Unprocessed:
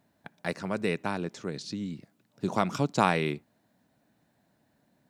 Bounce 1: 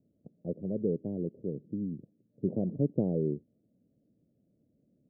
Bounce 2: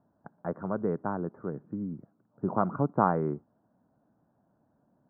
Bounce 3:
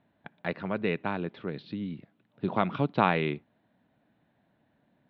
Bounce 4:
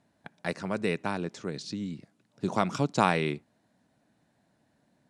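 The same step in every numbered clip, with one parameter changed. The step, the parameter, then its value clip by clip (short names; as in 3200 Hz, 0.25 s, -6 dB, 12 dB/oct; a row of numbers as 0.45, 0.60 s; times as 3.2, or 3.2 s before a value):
steep low-pass, frequency: 540, 1400, 3700, 11000 Hz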